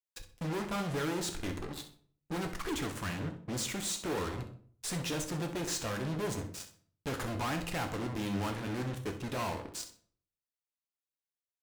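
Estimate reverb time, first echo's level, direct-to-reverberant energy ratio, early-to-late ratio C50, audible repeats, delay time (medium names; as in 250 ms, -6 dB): 0.50 s, -13.0 dB, 4.0 dB, 9.5 dB, 1, 64 ms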